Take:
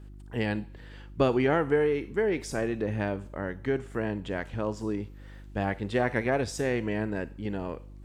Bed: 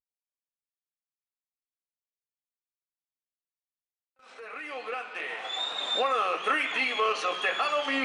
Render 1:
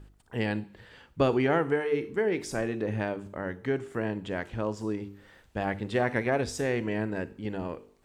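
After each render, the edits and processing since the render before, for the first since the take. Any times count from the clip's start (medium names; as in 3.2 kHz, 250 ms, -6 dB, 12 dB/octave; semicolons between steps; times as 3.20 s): de-hum 50 Hz, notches 9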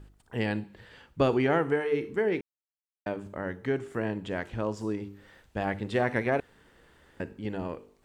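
2.41–3.06 s: mute; 6.40–7.20 s: room tone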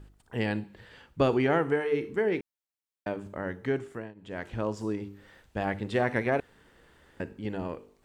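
3.77–4.52 s: dip -21.5 dB, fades 0.37 s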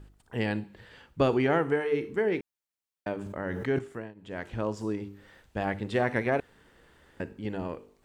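3.14–3.79 s: decay stretcher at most 24 dB/s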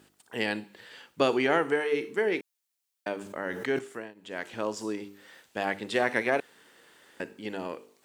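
high-pass 250 Hz 12 dB/octave; treble shelf 2.4 kHz +10 dB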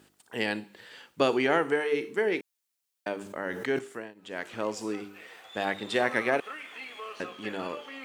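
add bed -14.5 dB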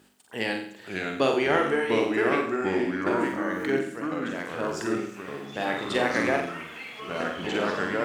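flutter echo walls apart 7.6 m, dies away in 0.54 s; ever faster or slower copies 473 ms, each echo -3 st, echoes 2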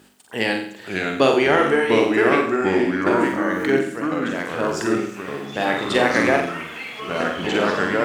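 trim +7 dB; peak limiter -2 dBFS, peak gain reduction 2.5 dB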